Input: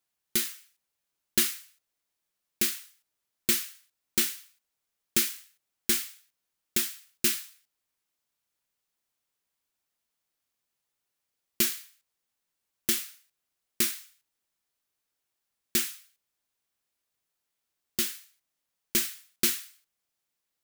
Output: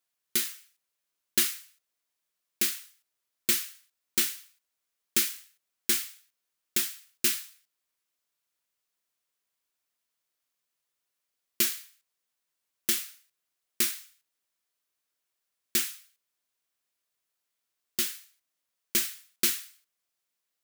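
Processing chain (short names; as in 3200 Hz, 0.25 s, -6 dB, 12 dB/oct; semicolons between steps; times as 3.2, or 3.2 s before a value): low shelf 270 Hz -8 dB; notch 830 Hz, Q 12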